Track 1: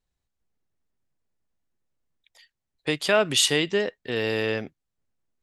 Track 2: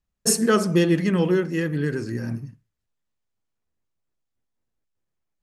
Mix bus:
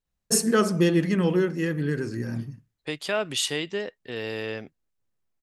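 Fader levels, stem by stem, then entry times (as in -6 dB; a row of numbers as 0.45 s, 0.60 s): -6.0 dB, -2.0 dB; 0.00 s, 0.05 s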